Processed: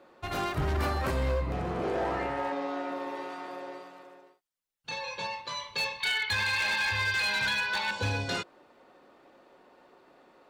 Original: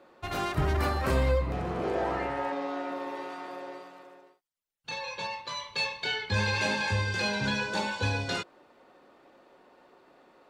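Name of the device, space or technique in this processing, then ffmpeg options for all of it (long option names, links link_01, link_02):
limiter into clipper: -filter_complex "[0:a]asettb=1/sr,asplit=3[link_01][link_02][link_03];[link_01]atrim=end=6.004[link_04];[link_02]atrim=start=6:end=7.91,asetpts=PTS-STARTPTS,afade=type=in:duration=0.004:curve=qsin,afade=type=out:start_time=1.906:duration=0.004:curve=qsin,equalizer=frequency=125:width_type=o:width=1:gain=-6,equalizer=frequency=250:width_type=o:width=1:gain=-10,equalizer=frequency=500:width_type=o:width=1:gain=-6,equalizer=frequency=1000:width_type=o:width=1:gain=5,equalizer=frequency=2000:width_type=o:width=1:gain=9,equalizer=frequency=4000:width_type=o:width=1:gain=9,equalizer=frequency=8000:width_type=o:width=1:gain=-9[link_05];[link_03]atrim=start=7.906[link_06];[link_04][link_05]acrossfade=duration=0.004:curve1=hsin:curve2=qsin[link_07];[link_07][link_06]acrossfade=duration=0.004:curve1=qsin:curve2=hsin,alimiter=limit=-18dB:level=0:latency=1:release=205,asoftclip=type=hard:threshold=-24dB"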